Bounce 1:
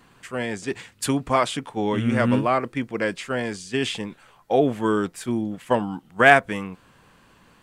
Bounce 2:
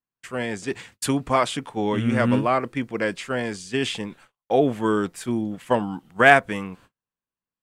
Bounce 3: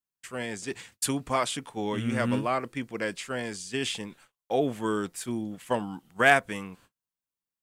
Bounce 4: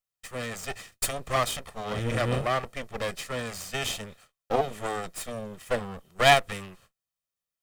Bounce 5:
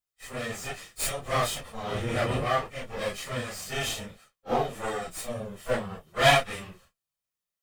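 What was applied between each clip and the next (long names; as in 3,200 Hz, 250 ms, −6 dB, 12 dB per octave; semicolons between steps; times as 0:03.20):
noise gate −48 dBFS, range −41 dB
high-shelf EQ 4,100 Hz +9.5 dB; level −7 dB
lower of the sound and its delayed copy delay 1.6 ms; level +2.5 dB
random phases in long frames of 100 ms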